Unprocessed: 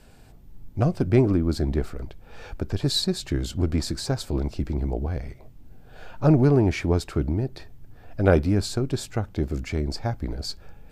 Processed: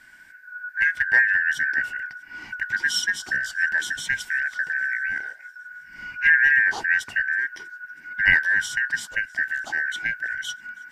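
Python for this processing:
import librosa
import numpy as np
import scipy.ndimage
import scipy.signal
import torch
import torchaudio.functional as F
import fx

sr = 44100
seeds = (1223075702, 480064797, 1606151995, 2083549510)

y = fx.band_shuffle(x, sr, order='2143')
y = fx.echo_wet_highpass(y, sr, ms=322, feedback_pct=70, hz=4900.0, wet_db=-22.5)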